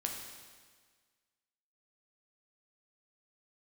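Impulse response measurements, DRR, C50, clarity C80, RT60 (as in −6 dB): 1.0 dB, 3.5 dB, 5.5 dB, 1.6 s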